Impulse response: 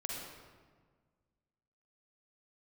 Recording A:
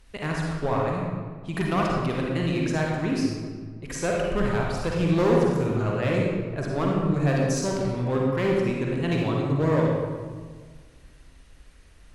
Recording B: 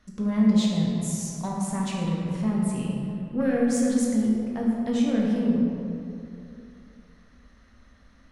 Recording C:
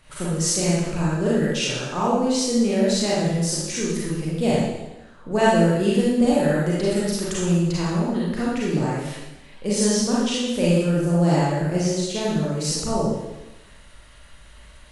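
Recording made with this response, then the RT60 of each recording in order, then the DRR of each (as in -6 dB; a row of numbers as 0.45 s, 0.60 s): A; 1.6 s, 2.6 s, 1.0 s; -2.0 dB, -3.5 dB, -7.5 dB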